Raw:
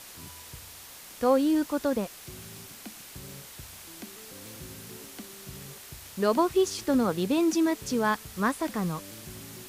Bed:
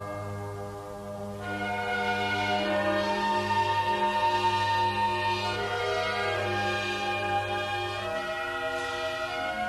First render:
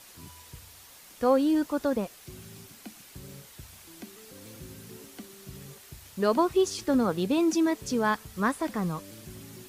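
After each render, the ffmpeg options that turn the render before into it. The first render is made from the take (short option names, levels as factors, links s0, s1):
-af "afftdn=nr=6:nf=-47"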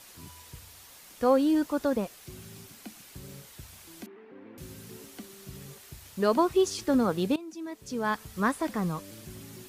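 -filter_complex "[0:a]asettb=1/sr,asplit=3[s0][s1][s2];[s0]atrim=end=4.064[s3];[s1]atrim=start=4.06:end=4.58,asetpts=PTS-STARTPTS,afade=t=in:d=0.004:c=qsin,afade=t=out:st=0.516:d=0.004:c=qsin,highpass=250,equalizer=f=250:t=q:w=4:g=8,equalizer=f=380:t=q:w=4:g=6,equalizer=f=550:t=q:w=4:g=-4,equalizer=f=910:t=q:w=4:g=3,equalizer=f=1300:t=q:w=4:g=-3,lowpass=f=2100:w=0.5412,lowpass=f=2100:w=1.3066[s4];[s2]atrim=start=4.576[s5];[s3][s4]acrossfade=d=0.004:c1=hsin:c2=qsin[s6];[s6][s5]acrossfade=d=0.004:c1=qsin:c2=hsin,asplit=2[s7][s8];[s7]atrim=end=7.36,asetpts=PTS-STARTPTS,afade=t=out:st=7.356:d=0.004:c=hsin:silence=0.112202[s9];[s8]atrim=start=7.36,asetpts=PTS-STARTPTS,afade=t=in:d=0.88:c=qua:silence=0.112202[s10];[s9][s10]concat=n=2:v=0:a=1"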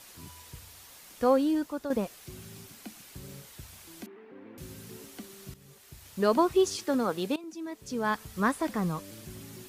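-filter_complex "[0:a]asettb=1/sr,asplit=3[s0][s1][s2];[s0]atrim=end=6.764[s3];[s1]atrim=start=6.76:end=7.44,asetpts=PTS-STARTPTS,afade=t=in:d=0.004:c=qsin,afade=t=out:st=0.676:d=0.004:c=qsin,highpass=f=350:p=1[s4];[s2]atrim=start=7.436[s5];[s3][s4]acrossfade=d=0.004:c1=hsin:c2=qsin[s6];[s6][s5]acrossfade=d=0.004:c1=qsin:c2=hsin,asplit=3[s7][s8][s9];[s7]atrim=end=1.9,asetpts=PTS-STARTPTS,afade=t=out:st=1.23:d=0.67:silence=0.354813[s10];[s8]atrim=start=1.9:end=5.54,asetpts=PTS-STARTPTS,afade=t=in:d=0.004:c=hsin:silence=0.354813,afade=t=out:st=3.636:d=0.004:c=hsin:silence=0.211349[s11];[s9]atrim=start=5.54,asetpts=PTS-STARTPTS,afade=t=in:d=0.67:silence=0.211349[s12];[s10][s11][s12]concat=n=3:v=0:a=1"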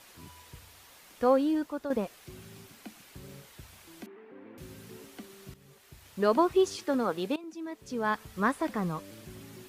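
-af "bass=f=250:g=-3,treble=f=4000:g=-6"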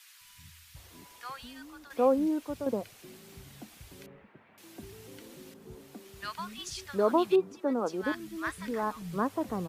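-filter_complex "[0:a]acrossover=split=160|1300[s0][s1][s2];[s0]adelay=210[s3];[s1]adelay=760[s4];[s3][s4][s2]amix=inputs=3:normalize=0"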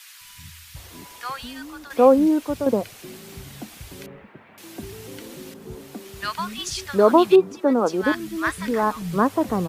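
-af "volume=3.35"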